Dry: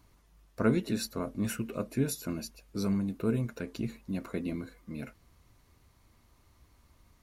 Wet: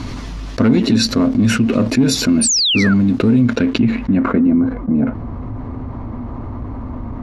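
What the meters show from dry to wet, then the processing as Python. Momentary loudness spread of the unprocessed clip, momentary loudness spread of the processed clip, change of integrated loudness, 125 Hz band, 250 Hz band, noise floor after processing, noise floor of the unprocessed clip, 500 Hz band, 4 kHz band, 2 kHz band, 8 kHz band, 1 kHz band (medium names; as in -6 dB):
13 LU, 16 LU, +19.0 dB, +16.5 dB, +20.0 dB, -28 dBFS, -65 dBFS, +13.5 dB, +26.5 dB, +20.5 dB, +22.5 dB, +17.0 dB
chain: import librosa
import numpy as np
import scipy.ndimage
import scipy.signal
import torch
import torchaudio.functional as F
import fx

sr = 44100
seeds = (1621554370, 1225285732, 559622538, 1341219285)

y = fx.leveller(x, sr, passes=2)
y = fx.peak_eq(y, sr, hz=250.0, db=14.5, octaves=0.33)
y = fx.filter_sweep_lowpass(y, sr, from_hz=4900.0, to_hz=900.0, start_s=3.37, end_s=4.74, q=1.2)
y = fx.spec_paint(y, sr, seeds[0], shape='fall', start_s=2.41, length_s=0.53, low_hz=1300.0, high_hz=9800.0, level_db=-27.0)
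y = fx.peak_eq(y, sr, hz=110.0, db=8.0, octaves=0.29)
y = fx.env_flatten(y, sr, amount_pct=70)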